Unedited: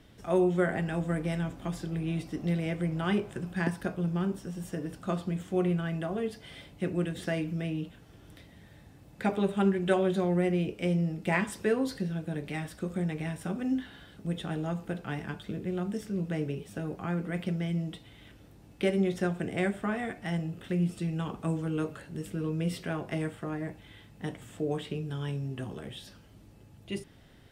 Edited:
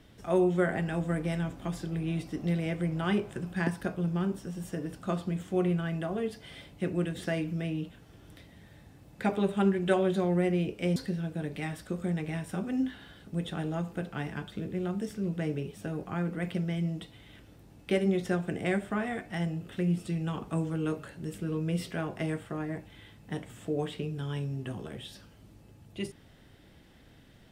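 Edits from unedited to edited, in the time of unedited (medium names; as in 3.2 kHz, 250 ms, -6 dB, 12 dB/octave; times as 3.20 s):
10.96–11.88 s: delete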